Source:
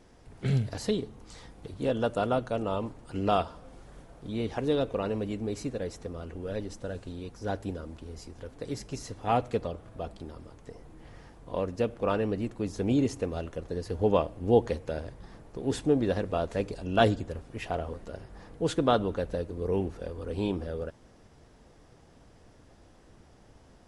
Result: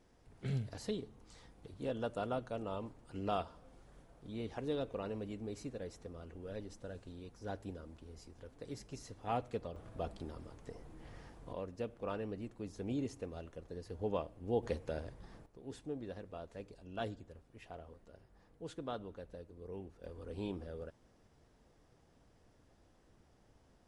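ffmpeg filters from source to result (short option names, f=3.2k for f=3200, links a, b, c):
-af "asetnsamples=n=441:p=0,asendcmd='9.76 volume volume -3.5dB;11.53 volume volume -12.5dB;14.63 volume volume -6.5dB;15.46 volume volume -18dB;20.04 volume volume -11dB',volume=-10.5dB"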